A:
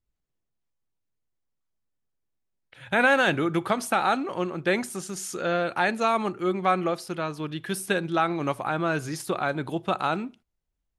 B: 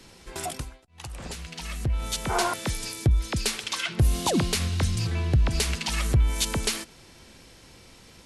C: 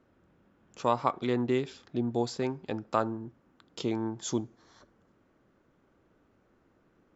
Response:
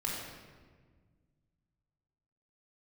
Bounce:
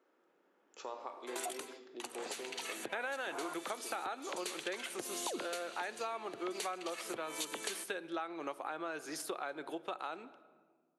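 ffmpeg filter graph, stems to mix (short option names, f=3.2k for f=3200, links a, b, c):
-filter_complex "[0:a]dynaudnorm=f=280:g=11:m=11.5dB,equalizer=f=150:w=5.2:g=8,volume=-13dB,asplit=3[a][b][c];[b]volume=-21dB[d];[1:a]agate=range=-26dB:threshold=-46dB:ratio=16:detection=peak,bandreject=f=5.2k:w=6.7,adelay=1000,volume=-2dB[e];[2:a]acompressor=threshold=-45dB:ratio=2,volume=-7.5dB,asplit=2[f][g];[g]volume=-5dB[h];[c]apad=whole_len=408141[i];[e][i]sidechaincompress=threshold=-30dB:ratio=3:attack=31:release=1340[j];[3:a]atrim=start_sample=2205[k];[d][h]amix=inputs=2:normalize=0[l];[l][k]afir=irnorm=-1:irlink=0[m];[a][j][f][m]amix=inputs=4:normalize=0,highpass=f=330:w=0.5412,highpass=f=330:w=1.3066,acompressor=threshold=-37dB:ratio=6"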